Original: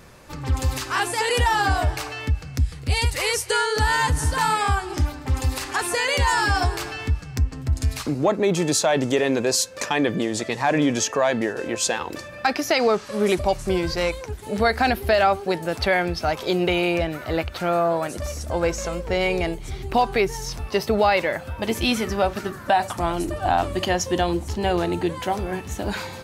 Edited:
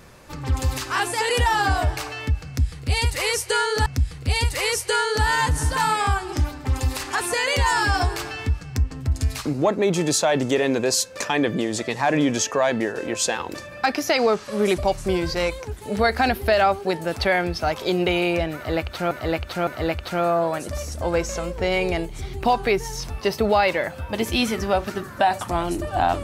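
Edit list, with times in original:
0:02.47–0:03.86: repeat, 2 plays
0:17.16–0:17.72: repeat, 3 plays

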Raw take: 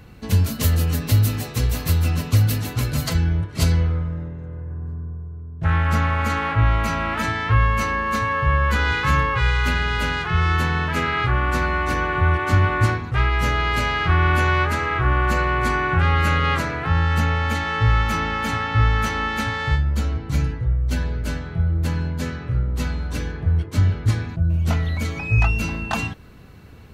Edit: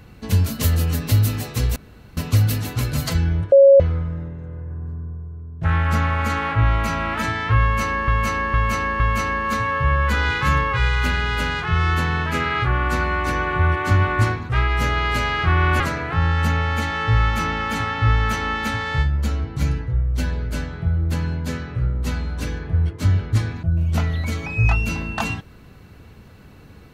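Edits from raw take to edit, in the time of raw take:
0:01.76–0:02.17: fill with room tone
0:03.52–0:03.80: beep over 551 Hz −6 dBFS
0:07.62–0:08.08: repeat, 4 plays
0:14.42–0:16.53: remove

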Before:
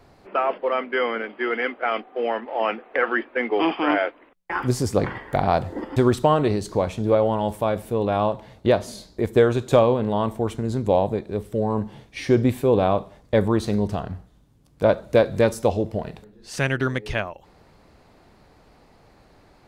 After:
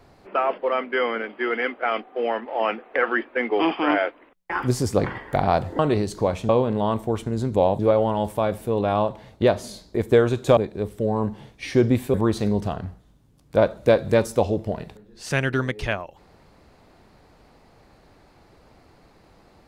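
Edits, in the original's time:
0:05.79–0:06.33: remove
0:09.81–0:11.11: move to 0:07.03
0:12.68–0:13.41: remove

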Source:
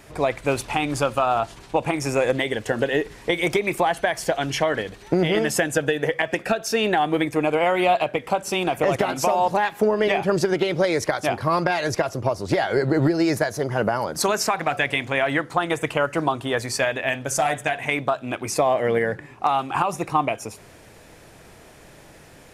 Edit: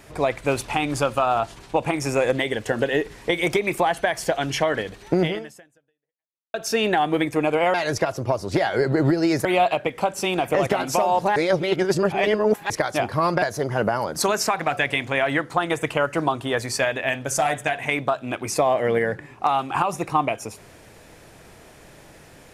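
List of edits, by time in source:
0:05.25–0:06.54: fade out exponential
0:09.65–0:10.99: reverse
0:11.71–0:13.42: move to 0:07.74

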